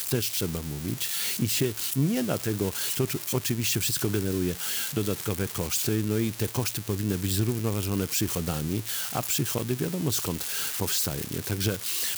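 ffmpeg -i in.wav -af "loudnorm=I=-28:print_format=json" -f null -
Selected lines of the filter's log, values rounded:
"input_i" : "-27.3",
"input_tp" : "-12.8",
"input_lra" : "0.9",
"input_thresh" : "-37.3",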